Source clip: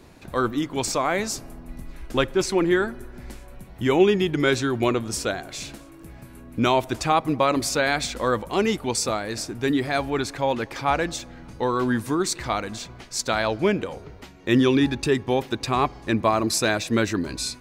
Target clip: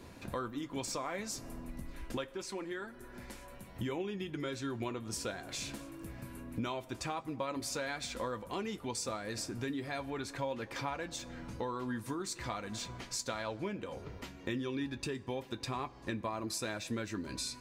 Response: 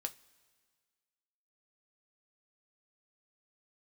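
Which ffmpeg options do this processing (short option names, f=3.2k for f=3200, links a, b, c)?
-filter_complex "[0:a]acompressor=threshold=-34dB:ratio=5,asettb=1/sr,asplit=3[a][b][c];[a]atrim=end=2.174[d];[b]atrim=start=2.17:end=3.75,asetpts=PTS-STARTPTS,afade=t=in:d=0.004:c=qsin,afade=t=out:st=1.576:d=0.004:c=qsin,lowshelf=f=270:g=-7.5[e];[c]atrim=start=3.746[f];[d][e]acrossfade=d=0.004:c1=hsin:c2=qsin[g];[g][f]acrossfade=d=0.004:c1=qsin:c2=hsin[h];[1:a]atrim=start_sample=2205,asetrate=83790,aresample=44100[i];[h][i]afir=irnorm=-1:irlink=0,volume=4.5dB"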